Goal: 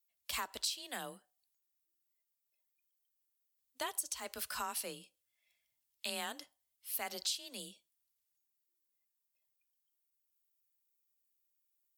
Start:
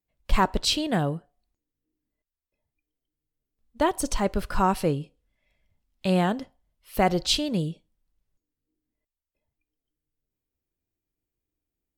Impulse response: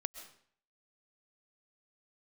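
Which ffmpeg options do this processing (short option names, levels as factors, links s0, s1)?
-af "afreqshift=27,aderivative,acompressor=threshold=0.0112:ratio=10,volume=1.68"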